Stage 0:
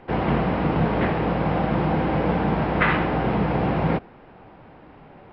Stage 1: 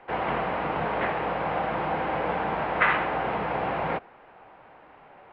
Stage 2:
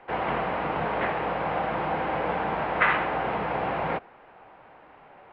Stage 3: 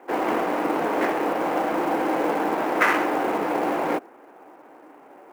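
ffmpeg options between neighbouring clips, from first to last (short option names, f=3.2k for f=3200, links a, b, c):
-filter_complex "[0:a]acrossover=split=500 3700:gain=0.178 1 0.141[a][b][c];[a][b][c]amix=inputs=3:normalize=0"
-af anull
-af "highpass=f=300:t=q:w=3.7,adynamicsmooth=sensitivity=6.5:basefreq=2.5k,acrusher=bits=6:mode=log:mix=0:aa=0.000001,volume=1.5dB"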